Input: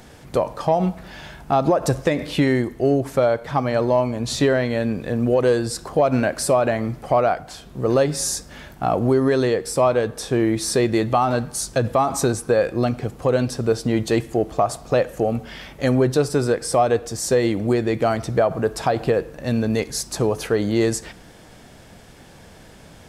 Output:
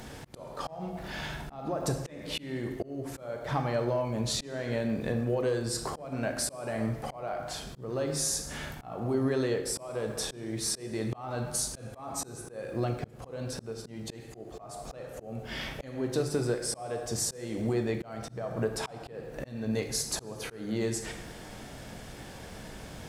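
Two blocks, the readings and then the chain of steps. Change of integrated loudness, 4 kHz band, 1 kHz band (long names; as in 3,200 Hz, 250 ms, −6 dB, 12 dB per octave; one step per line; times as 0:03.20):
−12.5 dB, −6.5 dB, −16.0 dB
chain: downward compressor 4 to 1, threshold −29 dBFS, peak gain reduction 13.5 dB
dense smooth reverb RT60 0.94 s, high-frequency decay 0.85×, pre-delay 0 ms, DRR 5 dB
surface crackle 440 per second −53 dBFS
volume swells 336 ms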